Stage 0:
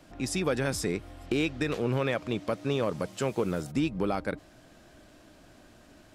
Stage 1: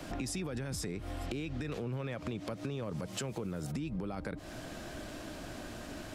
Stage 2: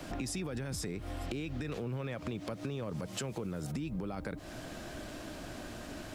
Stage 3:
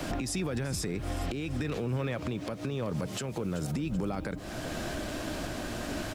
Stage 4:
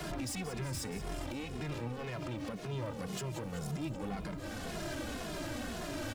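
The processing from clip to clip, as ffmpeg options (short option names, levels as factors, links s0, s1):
-filter_complex "[0:a]acrossover=split=210[s0][s1];[s1]acompressor=threshold=0.02:ratio=6[s2];[s0][s2]amix=inputs=2:normalize=0,alimiter=level_in=2.24:limit=0.0631:level=0:latency=1:release=46,volume=0.447,acompressor=threshold=0.00501:ratio=6,volume=3.55"
-af "acrusher=bits=11:mix=0:aa=0.000001"
-af "aecho=1:1:382|764|1146|1528:0.141|0.0664|0.0312|0.0147,alimiter=level_in=2.66:limit=0.0631:level=0:latency=1:release=475,volume=0.376,volume=2.82"
-filter_complex "[0:a]asoftclip=type=tanh:threshold=0.0158,aecho=1:1:181|362|543|724|905:0.251|0.128|0.0653|0.0333|0.017,asplit=2[s0][s1];[s1]adelay=2.4,afreqshift=-1.9[s2];[s0][s2]amix=inputs=2:normalize=1,volume=1.41"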